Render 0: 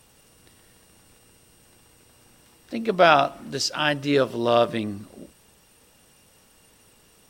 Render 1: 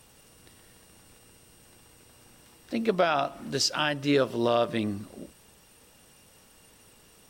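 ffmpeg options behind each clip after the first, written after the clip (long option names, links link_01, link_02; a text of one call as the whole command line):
ffmpeg -i in.wav -af "alimiter=limit=-13dB:level=0:latency=1:release=249" out.wav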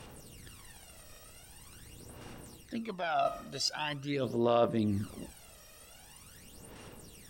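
ffmpeg -i in.wav -af "areverse,acompressor=threshold=-35dB:ratio=4,areverse,aphaser=in_gain=1:out_gain=1:delay=1.6:decay=0.68:speed=0.44:type=sinusoidal" out.wav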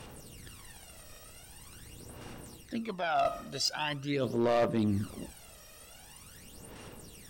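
ffmpeg -i in.wav -af "asoftclip=type=hard:threshold=-24dB,volume=2dB" out.wav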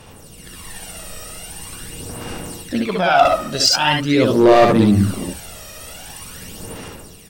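ffmpeg -i in.wav -af "dynaudnorm=framelen=120:gausssize=9:maxgain=10dB,aecho=1:1:62|73:0.668|0.631,volume=4.5dB" out.wav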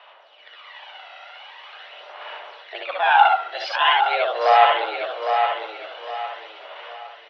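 ffmpeg -i in.wav -af "highpass=frequency=520:width_type=q:width=0.5412,highpass=frequency=520:width_type=q:width=1.307,lowpass=frequency=3400:width_type=q:width=0.5176,lowpass=frequency=3400:width_type=q:width=0.7071,lowpass=frequency=3400:width_type=q:width=1.932,afreqshift=120,aecho=1:1:809|1618|2427|3236:0.501|0.165|0.0546|0.018,volume=-1dB" out.wav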